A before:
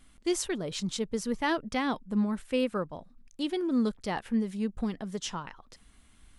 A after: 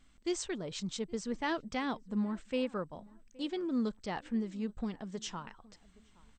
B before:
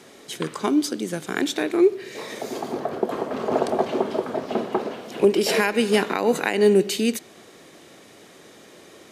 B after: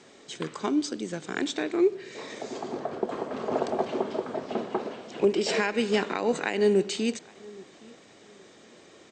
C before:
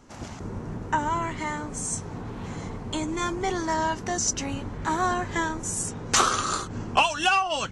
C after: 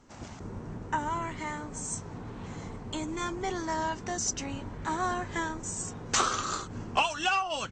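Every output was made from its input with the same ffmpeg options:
-filter_complex "[0:a]asplit=2[link_01][link_02];[link_02]adelay=819,lowpass=frequency=1600:poles=1,volume=-23dB,asplit=2[link_03][link_04];[link_04]adelay=819,lowpass=frequency=1600:poles=1,volume=0.28[link_05];[link_03][link_05]amix=inputs=2:normalize=0[link_06];[link_01][link_06]amix=inputs=2:normalize=0,volume=-5.5dB" -ar 32000 -c:a mp2 -b:a 64k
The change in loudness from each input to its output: −5.5, −5.5, −5.5 LU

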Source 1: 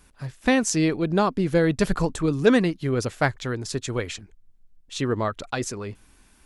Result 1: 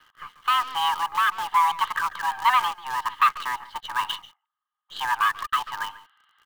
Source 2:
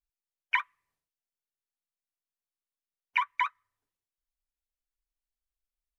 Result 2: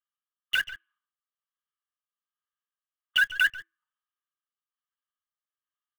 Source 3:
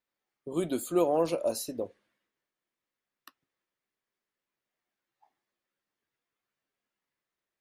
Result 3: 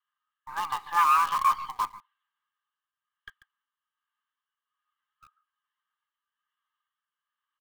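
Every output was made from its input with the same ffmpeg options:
-filter_complex "[0:a]asplit=3[link_01][link_02][link_03];[link_01]bandpass=frequency=730:width_type=q:width=8,volume=0dB[link_04];[link_02]bandpass=frequency=1090:width_type=q:width=8,volume=-6dB[link_05];[link_03]bandpass=frequency=2440:width_type=q:width=8,volume=-9dB[link_06];[link_04][link_05][link_06]amix=inputs=3:normalize=0,apsyclip=22.5dB,aresample=11025,asoftclip=type=tanh:threshold=-10.5dB,aresample=44100,highpass=frequency=340:width_type=q:width=0.5412,highpass=frequency=340:width_type=q:width=1.307,lowpass=frequency=3500:width_type=q:width=0.5176,lowpass=frequency=3500:width_type=q:width=0.7071,lowpass=frequency=3500:width_type=q:width=1.932,afreqshift=170,asplit=2[link_07][link_08];[link_08]adelay=140,highpass=300,lowpass=3400,asoftclip=type=hard:threshold=-13.5dB,volume=-14dB[link_09];[link_07][link_09]amix=inputs=2:normalize=0,tremolo=f=1.2:d=0.39,afreqshift=330,asplit=2[link_10][link_11];[link_11]acrusher=bits=5:dc=4:mix=0:aa=0.000001,volume=-3dB[link_12];[link_10][link_12]amix=inputs=2:normalize=0,volume=-7dB"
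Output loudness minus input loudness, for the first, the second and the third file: −0.5, +5.0, +5.0 LU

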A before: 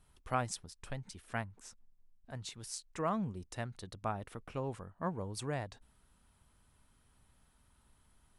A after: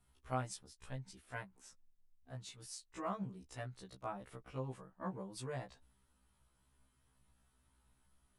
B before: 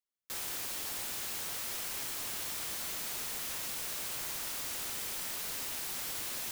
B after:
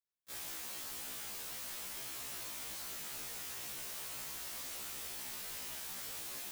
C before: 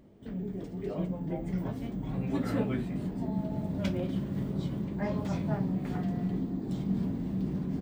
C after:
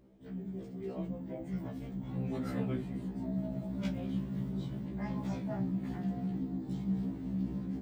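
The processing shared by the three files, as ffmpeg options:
-af "afftfilt=real='re*1.73*eq(mod(b,3),0)':imag='im*1.73*eq(mod(b,3),0)':win_size=2048:overlap=0.75,volume=-3.5dB"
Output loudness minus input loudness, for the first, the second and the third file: −5.5, −6.0, −4.0 LU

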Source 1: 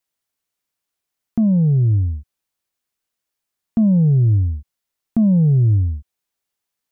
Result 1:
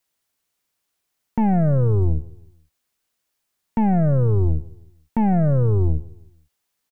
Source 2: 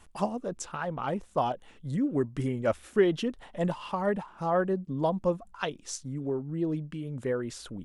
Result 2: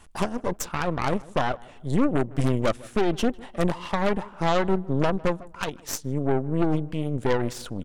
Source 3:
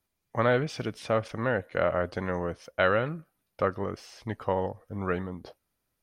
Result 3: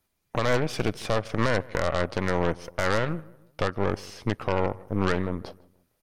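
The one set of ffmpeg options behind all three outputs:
-filter_complex "[0:a]alimiter=limit=-21dB:level=0:latency=1:release=232,aeval=exprs='0.0891*(cos(1*acos(clip(val(0)/0.0891,-1,1)))-cos(1*PI/2))+0.0316*(cos(4*acos(clip(val(0)/0.0891,-1,1)))-cos(4*PI/2))+0.00794*(cos(6*acos(clip(val(0)/0.0891,-1,1)))-cos(6*PI/2))+0.000708*(cos(7*acos(clip(val(0)/0.0891,-1,1)))-cos(7*PI/2))+0.00631*(cos(8*acos(clip(val(0)/0.0891,-1,1)))-cos(8*PI/2))':channel_layout=same,asplit=2[link_01][link_02];[link_02]adelay=155,lowpass=frequency=1500:poles=1,volume=-21dB,asplit=2[link_03][link_04];[link_04]adelay=155,lowpass=frequency=1500:poles=1,volume=0.42,asplit=2[link_05][link_06];[link_06]adelay=155,lowpass=frequency=1500:poles=1,volume=0.42[link_07];[link_01][link_03][link_05][link_07]amix=inputs=4:normalize=0,volume=5.5dB"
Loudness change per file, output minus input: −3.5, +4.5, +2.0 LU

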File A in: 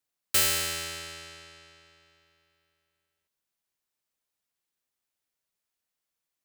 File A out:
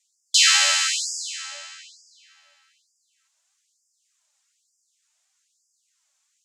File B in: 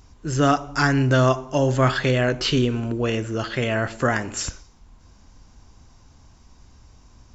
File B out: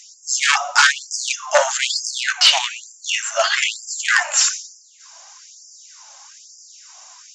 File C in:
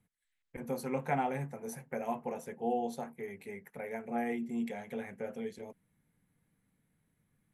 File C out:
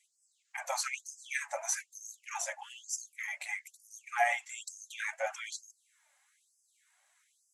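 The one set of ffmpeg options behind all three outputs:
-filter_complex "[0:a]flanger=delay=2.4:depth=1.5:regen=43:speed=1.7:shape=triangular,acrossover=split=5100[link_01][link_02];[link_02]acompressor=threshold=-48dB:ratio=4:attack=1:release=60[link_03];[link_01][link_03]amix=inputs=2:normalize=0,aeval=exprs='0.316*sin(PI/2*2.82*val(0)/0.316)':channel_layout=same,lowpass=frequency=7100:width_type=q:width=3.4,afftfilt=real='re*gte(b*sr/1024,540*pow(4800/540,0.5+0.5*sin(2*PI*1.1*pts/sr)))':imag='im*gte(b*sr/1024,540*pow(4800/540,0.5+0.5*sin(2*PI*1.1*pts/sr)))':win_size=1024:overlap=0.75,volume=4dB"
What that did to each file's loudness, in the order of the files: +7.5, +4.5, +1.0 LU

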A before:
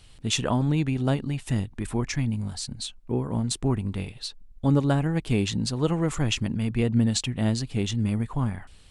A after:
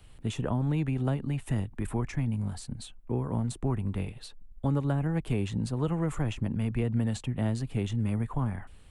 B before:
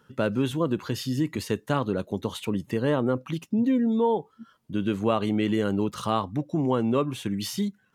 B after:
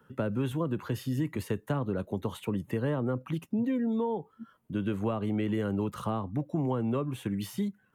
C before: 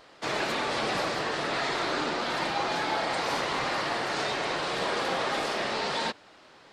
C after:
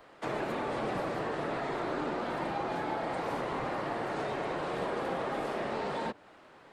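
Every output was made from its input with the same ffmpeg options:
-filter_complex "[0:a]equalizer=frequency=5000:width=0.81:gain=-12,acrossover=split=170|420|970[link_01][link_02][link_03][link_04];[link_01]acompressor=threshold=-28dB:ratio=4[link_05];[link_02]acompressor=threshold=-36dB:ratio=4[link_06];[link_03]acompressor=threshold=-36dB:ratio=4[link_07];[link_04]acompressor=threshold=-42dB:ratio=4[link_08];[link_05][link_06][link_07][link_08]amix=inputs=4:normalize=0"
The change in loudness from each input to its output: −4.5, −5.0, −5.5 LU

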